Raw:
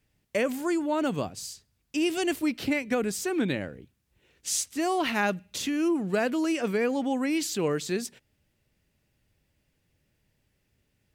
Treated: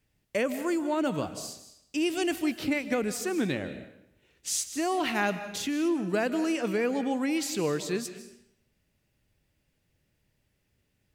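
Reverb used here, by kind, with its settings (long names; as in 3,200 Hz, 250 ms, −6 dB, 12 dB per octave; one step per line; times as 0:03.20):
comb and all-pass reverb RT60 0.74 s, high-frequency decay 0.95×, pre-delay 115 ms, DRR 11 dB
level −1.5 dB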